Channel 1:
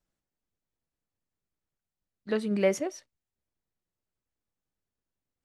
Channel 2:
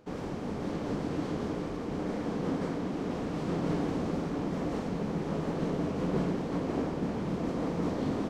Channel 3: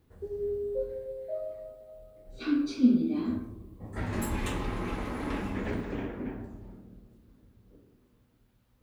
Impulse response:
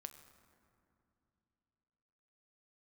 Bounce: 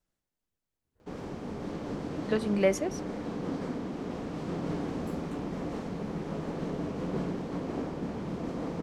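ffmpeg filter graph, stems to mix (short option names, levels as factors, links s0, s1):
-filter_complex "[0:a]volume=1[s0];[1:a]adelay=1000,volume=0.562,asplit=2[s1][s2];[s2]volume=0.531[s3];[2:a]adelay=850,volume=0.112[s4];[3:a]atrim=start_sample=2205[s5];[s3][s5]afir=irnorm=-1:irlink=0[s6];[s0][s1][s4][s6]amix=inputs=4:normalize=0"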